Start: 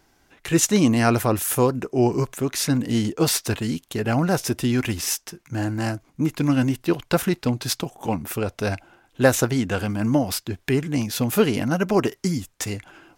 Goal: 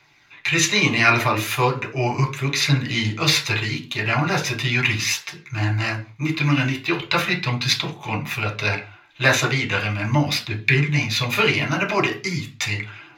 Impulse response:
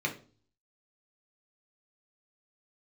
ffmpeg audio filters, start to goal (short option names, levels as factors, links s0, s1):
-filter_complex "[0:a]equalizer=f=250:t=o:w=1:g=-9,equalizer=f=500:t=o:w=1:g=-6,equalizer=f=1000:t=o:w=1:g=5,equalizer=f=2000:t=o:w=1:g=8,equalizer=f=4000:t=o:w=1:g=11,equalizer=f=8000:t=o:w=1:g=-4[s0];[1:a]atrim=start_sample=2205,afade=t=out:st=0.26:d=0.01,atrim=end_sample=11907[s1];[s0][s1]afir=irnorm=-1:irlink=0,aphaser=in_gain=1:out_gain=1:delay=3.4:decay=0.26:speed=0.38:type=triangular,volume=0.562"